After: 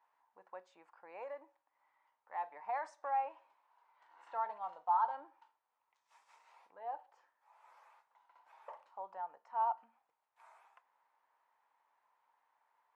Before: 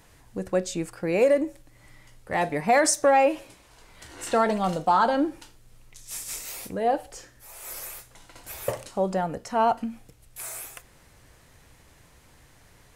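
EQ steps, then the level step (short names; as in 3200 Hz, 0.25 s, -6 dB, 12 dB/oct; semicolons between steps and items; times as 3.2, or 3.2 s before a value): ladder band-pass 1000 Hz, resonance 70%; -8.0 dB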